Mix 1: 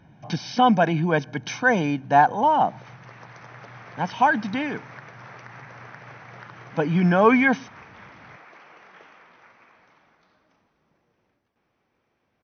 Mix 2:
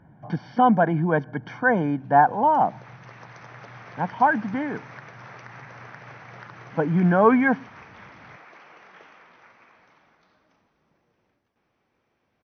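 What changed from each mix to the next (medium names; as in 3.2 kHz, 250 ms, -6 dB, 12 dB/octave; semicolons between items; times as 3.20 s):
speech: add Savitzky-Golay filter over 41 samples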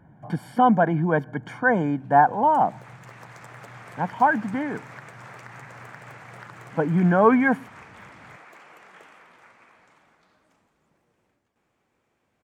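master: remove brick-wall FIR low-pass 6.3 kHz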